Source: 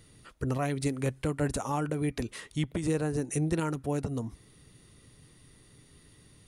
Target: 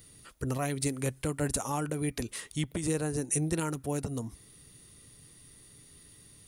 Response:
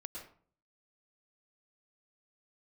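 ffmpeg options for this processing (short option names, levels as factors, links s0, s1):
-af "aemphasis=mode=production:type=50kf,volume=0.794"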